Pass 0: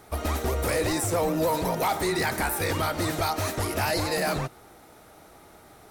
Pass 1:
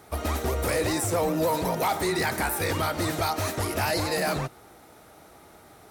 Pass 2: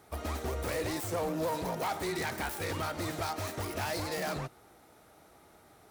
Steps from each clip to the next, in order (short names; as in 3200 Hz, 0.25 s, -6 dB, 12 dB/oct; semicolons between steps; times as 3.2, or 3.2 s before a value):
HPF 44 Hz
self-modulated delay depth 0.088 ms; gain -7.5 dB